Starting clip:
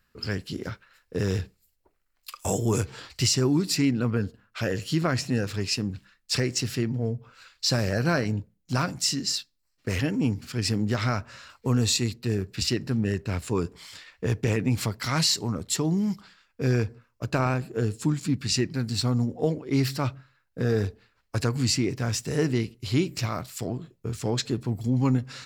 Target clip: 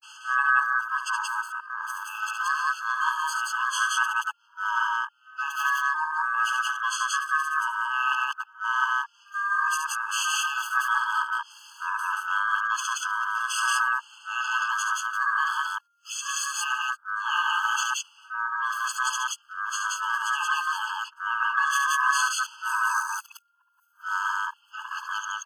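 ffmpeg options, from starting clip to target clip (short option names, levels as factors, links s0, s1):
-filter_complex "[0:a]areverse,aeval=exprs='val(0)*sin(2*PI*1400*n/s)':c=same,asplit=2[s0][s1];[s1]aecho=0:1:69.97|177.8:0.501|1[s2];[s0][s2]amix=inputs=2:normalize=0,afftfilt=real='re*eq(mod(floor(b*sr/1024/860),2),1)':imag='im*eq(mod(floor(b*sr/1024/860),2),1)':win_size=1024:overlap=0.75"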